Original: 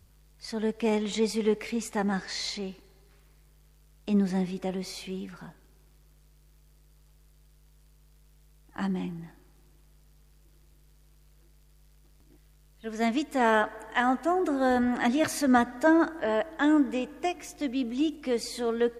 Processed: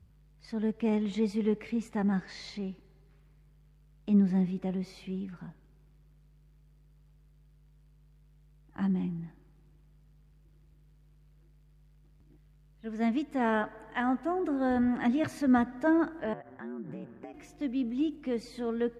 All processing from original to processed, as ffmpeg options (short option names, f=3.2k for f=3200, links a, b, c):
-filter_complex "[0:a]asettb=1/sr,asplit=3[a][b][c];[a]atrim=end=16.334[d];[b]atrim=start=16.33:end=17.34,asetpts=PTS-STARTPTS,afade=t=in:d=0.004:c=qsin,afade=t=out:st=1.006:d=0.004:c=qsin,highshelf=f=2.3k:t=q:w=1.5:g=-7,acompressor=threshold=-32dB:ratio=10:attack=3.2:release=140:knee=1:detection=peak,aeval=exprs='val(0)*sin(2*PI*65*n/s)':c=same[e];[c]atrim=start=17.336[f];[d][e]acrossfade=d=0.004:c1=hsin:c2=qsin[g];[g][f]acrossfade=d=0.004:c1=qsin:c2=hsin,highpass=f=140:p=1,bass=f=250:g=14,treble=f=4k:g=-10,volume=-6.5dB"